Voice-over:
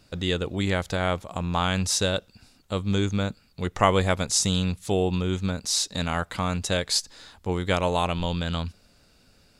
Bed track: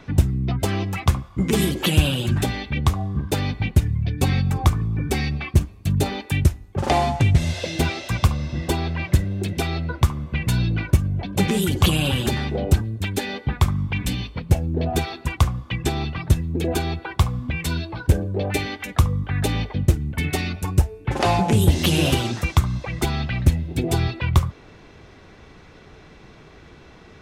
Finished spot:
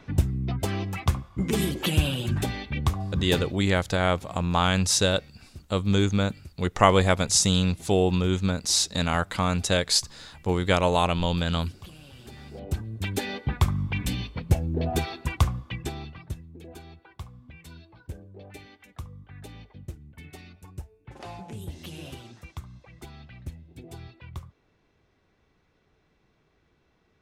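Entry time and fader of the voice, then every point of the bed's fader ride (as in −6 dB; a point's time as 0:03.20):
3.00 s, +2.0 dB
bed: 0:03.38 −5.5 dB
0:03.60 −28 dB
0:12.09 −28 dB
0:13.07 −4 dB
0:15.51 −4 dB
0:16.55 −21.5 dB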